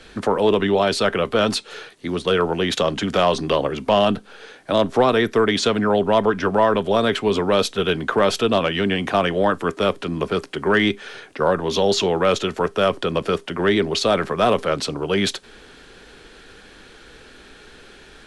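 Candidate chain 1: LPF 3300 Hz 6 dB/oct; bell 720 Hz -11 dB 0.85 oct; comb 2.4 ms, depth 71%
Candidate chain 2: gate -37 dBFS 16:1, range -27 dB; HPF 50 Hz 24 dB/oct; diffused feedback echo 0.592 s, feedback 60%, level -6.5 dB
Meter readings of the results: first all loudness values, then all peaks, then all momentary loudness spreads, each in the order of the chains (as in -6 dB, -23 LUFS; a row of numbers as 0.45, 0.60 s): -21.5, -19.0 LUFS; -6.0, -4.0 dBFS; 7, 8 LU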